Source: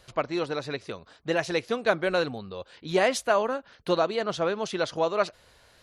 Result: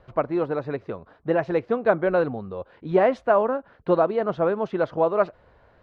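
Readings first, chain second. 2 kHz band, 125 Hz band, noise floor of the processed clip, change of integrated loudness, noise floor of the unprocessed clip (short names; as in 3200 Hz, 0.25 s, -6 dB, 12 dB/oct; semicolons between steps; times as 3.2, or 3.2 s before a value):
-2.0 dB, +5.0 dB, -58 dBFS, +3.5 dB, -59 dBFS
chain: LPF 1200 Hz 12 dB/oct; gain +5 dB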